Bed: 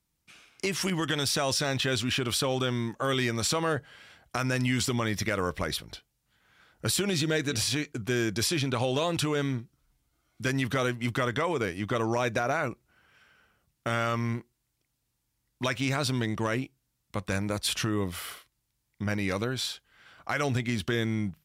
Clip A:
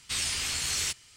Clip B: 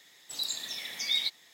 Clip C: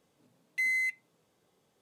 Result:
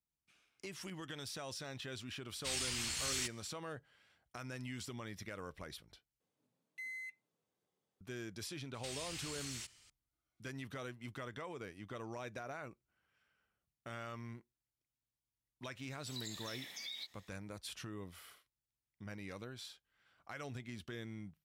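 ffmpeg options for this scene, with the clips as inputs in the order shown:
ffmpeg -i bed.wav -i cue0.wav -i cue1.wav -i cue2.wav -filter_complex "[1:a]asplit=2[link_01][link_02];[0:a]volume=-18dB[link_03];[link_02]acompressor=threshold=-33dB:ratio=6:attack=3.2:release=140:knee=1:detection=peak[link_04];[2:a]acompressor=threshold=-32dB:ratio=6:attack=3.2:release=140:knee=1:detection=peak[link_05];[link_03]asplit=2[link_06][link_07];[link_06]atrim=end=6.204[link_08];[3:a]atrim=end=1.81,asetpts=PTS-STARTPTS,volume=-16.5dB[link_09];[link_07]atrim=start=8.006[link_10];[link_01]atrim=end=1.16,asetpts=PTS-STARTPTS,volume=-8.5dB,afade=type=in:duration=0.004:curve=hsin,afade=type=out:start_time=1.156:duration=0.004:curve=hsin,adelay=2350[link_11];[link_04]atrim=end=1.16,asetpts=PTS-STARTPTS,volume=-9.5dB,afade=type=in:duration=0.004:curve=hsin,afade=type=out:start_time=1.156:duration=0.004:curve=hsin,adelay=385434S[link_12];[link_05]atrim=end=1.53,asetpts=PTS-STARTPTS,volume=-10dB,afade=type=in:duration=0.004:curve=hsin,afade=type=out:start_time=1.526:duration=0.004:curve=hsin,adelay=15770[link_13];[link_08][link_09]acrossfade=duration=0.004:curve1=hsin:curve2=hsin[link_14];[link_14][link_10]acrossfade=duration=0.004:curve1=hsin:curve2=hsin[link_15];[link_15][link_11][link_12][link_13]amix=inputs=4:normalize=0" out.wav

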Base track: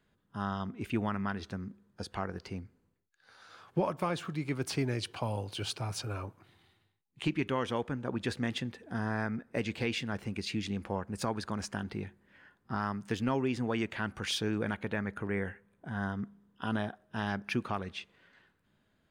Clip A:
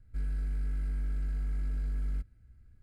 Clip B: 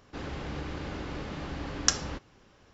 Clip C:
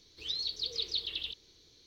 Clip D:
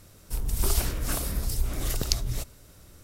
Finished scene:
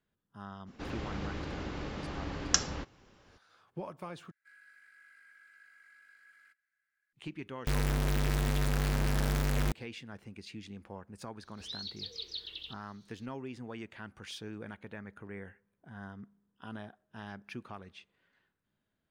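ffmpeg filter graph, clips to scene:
ffmpeg -i bed.wav -i cue0.wav -i cue1.wav -i cue2.wav -filter_complex "[1:a]asplit=2[link_01][link_02];[0:a]volume=-11dB[link_03];[link_01]highpass=frequency=1700:width_type=q:width=6.4[link_04];[link_02]acrusher=bits=4:mix=0:aa=0.000001[link_05];[link_03]asplit=2[link_06][link_07];[link_06]atrim=end=4.314[link_08];[link_04]atrim=end=2.82,asetpts=PTS-STARTPTS,volume=-11dB[link_09];[link_07]atrim=start=7.126[link_10];[2:a]atrim=end=2.73,asetpts=PTS-STARTPTS,volume=-2dB,afade=type=in:duration=0.02,afade=type=out:start_time=2.71:duration=0.02,adelay=660[link_11];[link_05]atrim=end=2.82,asetpts=PTS-STARTPTS,volume=-0.5dB,afade=type=in:duration=0.004:curve=hsin,afade=type=out:start_time=2.816:duration=0.004:curve=hsin,adelay=7510[link_12];[3:a]atrim=end=1.86,asetpts=PTS-STARTPTS,volume=-7dB,afade=type=in:duration=0.004:curve=hsin,afade=type=out:start_time=1.856:duration=0.004:curve=hsin,adelay=11400[link_13];[link_08][link_09]acrossfade=duration=0.004:curve1=hsin:curve2=hsin[link_14];[link_14][link_10]acrossfade=duration=0.004:curve1=hsin:curve2=hsin[link_15];[link_15][link_11][link_12][link_13]amix=inputs=4:normalize=0" out.wav

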